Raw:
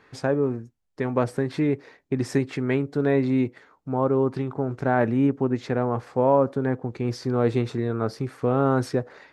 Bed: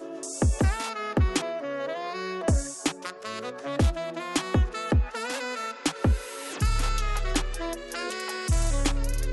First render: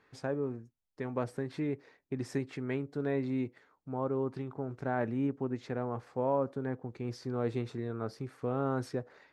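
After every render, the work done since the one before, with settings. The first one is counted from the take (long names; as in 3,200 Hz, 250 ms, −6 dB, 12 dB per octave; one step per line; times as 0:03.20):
level −11 dB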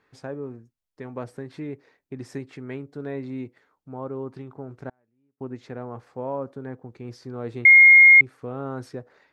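0:04.89–0:05.41: gate with flip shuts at −30 dBFS, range −38 dB
0:07.65–0:08.21: beep over 2,140 Hz −7.5 dBFS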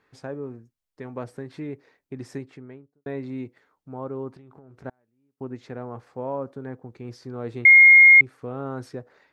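0:02.26–0:03.06: fade out and dull
0:04.36–0:04.84: downward compressor 16 to 1, threshold −44 dBFS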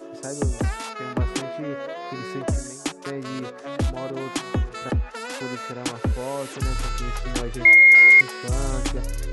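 mix in bed −1 dB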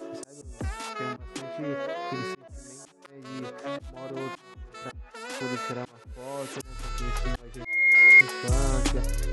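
volume swells 632 ms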